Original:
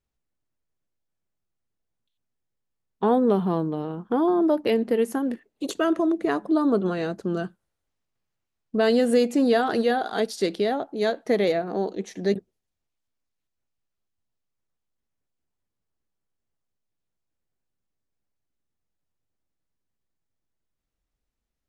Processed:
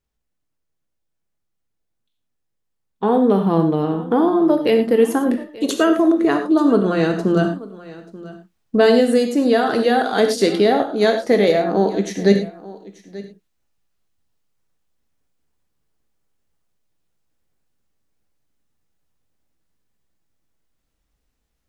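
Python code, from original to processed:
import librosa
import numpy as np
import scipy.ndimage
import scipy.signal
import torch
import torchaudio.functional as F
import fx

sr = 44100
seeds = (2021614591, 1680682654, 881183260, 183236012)

p1 = fx.rider(x, sr, range_db=4, speed_s=0.5)
p2 = p1 + fx.echo_single(p1, sr, ms=885, db=-19.0, dry=0)
p3 = fx.rev_gated(p2, sr, seeds[0], gate_ms=130, shape='flat', drr_db=5.5)
y = F.gain(torch.from_numpy(p3), 6.0).numpy()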